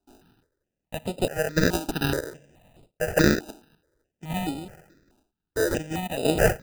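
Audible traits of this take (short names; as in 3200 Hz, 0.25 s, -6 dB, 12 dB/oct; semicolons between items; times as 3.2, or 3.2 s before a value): chopped level 0.64 Hz, depth 60%, duty 40%; aliases and images of a low sample rate 1100 Hz, jitter 0%; notches that jump at a steady rate 4.7 Hz 520–5900 Hz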